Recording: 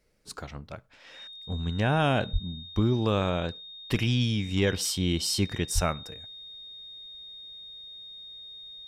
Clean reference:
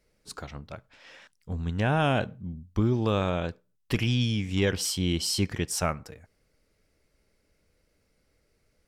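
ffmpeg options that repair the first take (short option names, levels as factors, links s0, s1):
-filter_complex "[0:a]bandreject=f=3700:w=30,asplit=3[s0][s1][s2];[s0]afade=t=out:st=2.32:d=0.02[s3];[s1]highpass=f=140:w=0.5412,highpass=f=140:w=1.3066,afade=t=in:st=2.32:d=0.02,afade=t=out:st=2.44:d=0.02[s4];[s2]afade=t=in:st=2.44:d=0.02[s5];[s3][s4][s5]amix=inputs=3:normalize=0,asplit=3[s6][s7][s8];[s6]afade=t=out:st=5.74:d=0.02[s9];[s7]highpass=f=140:w=0.5412,highpass=f=140:w=1.3066,afade=t=in:st=5.74:d=0.02,afade=t=out:st=5.86:d=0.02[s10];[s8]afade=t=in:st=5.86:d=0.02[s11];[s9][s10][s11]amix=inputs=3:normalize=0"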